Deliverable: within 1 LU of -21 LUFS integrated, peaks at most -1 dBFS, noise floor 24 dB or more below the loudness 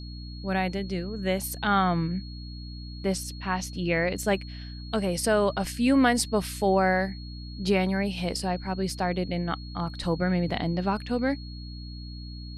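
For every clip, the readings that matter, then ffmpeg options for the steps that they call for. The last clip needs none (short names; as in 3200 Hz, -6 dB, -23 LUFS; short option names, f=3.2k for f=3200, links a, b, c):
hum 60 Hz; harmonics up to 300 Hz; hum level -37 dBFS; steady tone 4300 Hz; tone level -46 dBFS; loudness -27.0 LUFS; peak -10.0 dBFS; loudness target -21.0 LUFS
-> -af "bandreject=f=60:t=h:w=6,bandreject=f=120:t=h:w=6,bandreject=f=180:t=h:w=6,bandreject=f=240:t=h:w=6,bandreject=f=300:t=h:w=6"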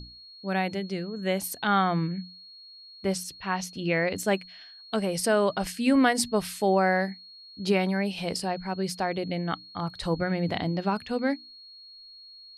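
hum none; steady tone 4300 Hz; tone level -46 dBFS
-> -af "bandreject=f=4.3k:w=30"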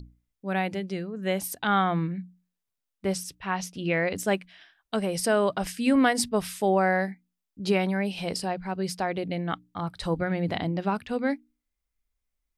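steady tone none; loudness -27.5 LUFS; peak -10.0 dBFS; loudness target -21.0 LUFS
-> -af "volume=6.5dB"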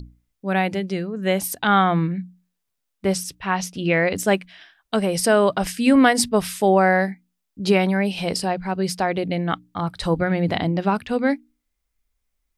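loudness -21.0 LUFS; peak -3.5 dBFS; noise floor -78 dBFS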